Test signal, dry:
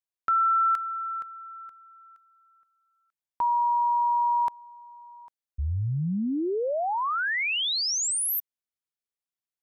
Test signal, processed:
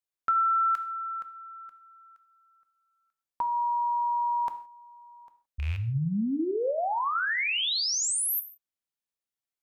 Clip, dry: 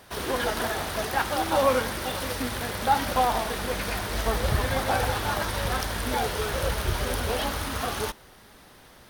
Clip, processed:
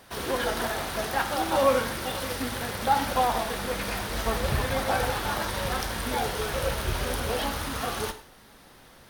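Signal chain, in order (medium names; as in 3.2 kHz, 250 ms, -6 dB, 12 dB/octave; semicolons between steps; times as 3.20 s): rattle on loud lows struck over -24 dBFS, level -27 dBFS; gated-style reverb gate 190 ms falling, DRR 8.5 dB; trim -1.5 dB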